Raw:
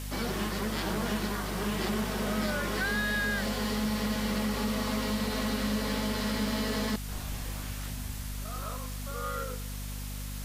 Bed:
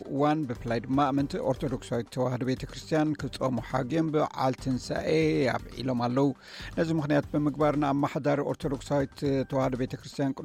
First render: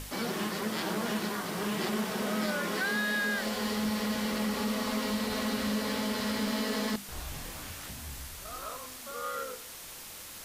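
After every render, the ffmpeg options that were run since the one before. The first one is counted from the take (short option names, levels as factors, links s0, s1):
-af "bandreject=f=50:t=h:w=6,bandreject=f=100:t=h:w=6,bandreject=f=150:t=h:w=6,bandreject=f=200:t=h:w=6,bandreject=f=250:t=h:w=6"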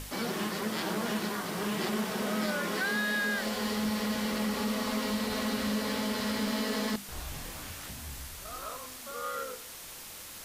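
-af anull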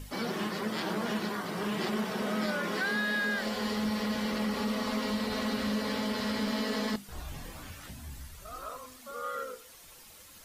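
-af "afftdn=nr=10:nf=-45"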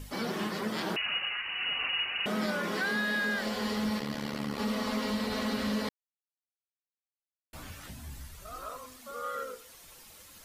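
-filter_complex "[0:a]asettb=1/sr,asplit=3[s0][s1][s2];[s0]atrim=end=0.964[s3];[s1]atrim=start=0.96:end=2.26,asetpts=PTS-STARTPTS,afade=t=in:d=0.004:c=qsin,afade=t=out:st=1.296:d=0.004:c=qsin,lowpass=f=2600:t=q:w=0.5098,lowpass=f=2600:t=q:w=0.6013,lowpass=f=2600:t=q:w=0.9,lowpass=f=2600:t=q:w=2.563,afreqshift=-3100[s4];[s2]atrim=start=2.256[s5];[s3][s4]acrossfade=d=0.004:c1=hsin:c2=qsin[s6];[s6][s5]acrossfade=d=0.004:c1=qsin:c2=hsin,asplit=3[s7][s8][s9];[s7]afade=t=out:st=3.98:d=0.02[s10];[s8]tremolo=f=73:d=0.889,afade=t=in:st=3.98:d=0.02,afade=t=out:st=4.58:d=0.02[s11];[s9]afade=t=in:st=4.58:d=0.02[s12];[s10][s11][s12]amix=inputs=3:normalize=0,asplit=3[s13][s14][s15];[s13]atrim=end=5.89,asetpts=PTS-STARTPTS,afade=t=out:st=5.886:d=0.004:c=hsin[s16];[s14]atrim=start=5.89:end=7.53,asetpts=PTS-STARTPTS,volume=0[s17];[s15]atrim=start=7.53,asetpts=PTS-STARTPTS,afade=t=in:d=0.004:c=hsin[s18];[s16][s17][s18]concat=n=3:v=0:a=1"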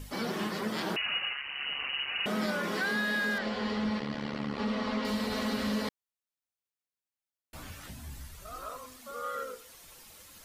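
-filter_complex "[0:a]asettb=1/sr,asplit=3[s0][s1][s2];[s0]atrim=end=1.334[s3];[s1]atrim=start=1.33:end=2.08,asetpts=PTS-STARTPTS,afade=t=in:d=0.004:c=qsin,afade=t=out:st=0.746:d=0.004:c=qsin,tremolo=f=140:d=0.667[s4];[s2]atrim=start=2.076[s5];[s3][s4]acrossfade=d=0.004:c1=hsin:c2=qsin[s6];[s6][s5]acrossfade=d=0.004:c1=qsin:c2=hsin,asettb=1/sr,asplit=3[s7][s8][s9];[s7]atrim=end=3.384[s10];[s8]atrim=start=3.38:end=5.05,asetpts=PTS-STARTPTS,afade=t=in:d=0.004:c=qsin,afade=t=out:st=1.666:d=0.004:c=qsin,lowpass=4000[s11];[s9]atrim=start=5.046[s12];[s10][s11]acrossfade=d=0.004:c1=hsin:c2=qsin[s13];[s13][s12]acrossfade=d=0.004:c1=qsin:c2=hsin"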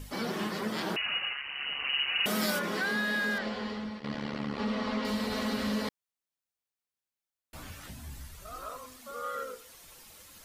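-filter_complex "[0:a]asplit=3[s0][s1][s2];[s0]afade=t=out:st=1.84:d=0.02[s3];[s1]aemphasis=mode=production:type=75kf,afade=t=in:st=1.84:d=0.02,afade=t=out:st=2.58:d=0.02[s4];[s2]afade=t=in:st=2.58:d=0.02[s5];[s3][s4][s5]amix=inputs=3:normalize=0,asplit=2[s6][s7];[s6]atrim=end=4.04,asetpts=PTS-STARTPTS,afade=t=out:st=3.36:d=0.68:silence=0.266073[s8];[s7]atrim=start=4.04,asetpts=PTS-STARTPTS,afade=t=in:d=0.004:c=hsin:silence=0.266073[s9];[s8][s9]concat=n=2:v=0:a=1"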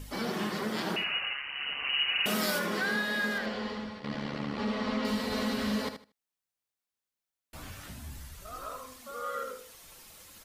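-af "aecho=1:1:77|154|231:0.355|0.071|0.0142"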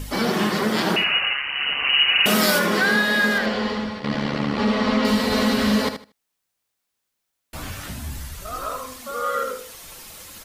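-af "volume=3.76"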